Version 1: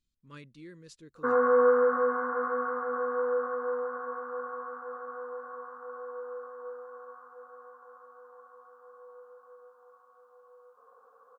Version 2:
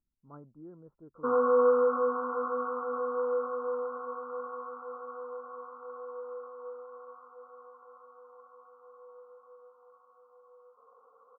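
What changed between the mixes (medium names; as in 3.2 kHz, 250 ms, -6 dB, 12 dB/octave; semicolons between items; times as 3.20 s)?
speech: remove Butterworth band-stop 740 Hz, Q 1.7; master: add rippled Chebyshev low-pass 1.4 kHz, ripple 3 dB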